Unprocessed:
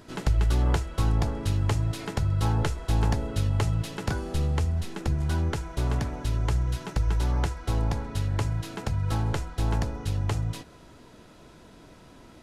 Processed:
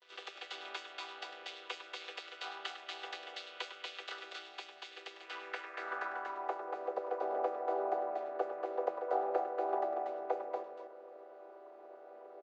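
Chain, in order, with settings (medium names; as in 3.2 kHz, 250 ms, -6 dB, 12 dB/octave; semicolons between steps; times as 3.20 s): vocoder on a held chord minor triad, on E3; elliptic high-pass 380 Hz, stop band 70 dB; gate with hold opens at -51 dBFS; band-pass sweep 3.3 kHz -> 630 Hz, 5.15–6.73 s; on a send: loudspeakers at several distances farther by 35 m -11 dB, 81 m -4 dB; on the sum: trim +8 dB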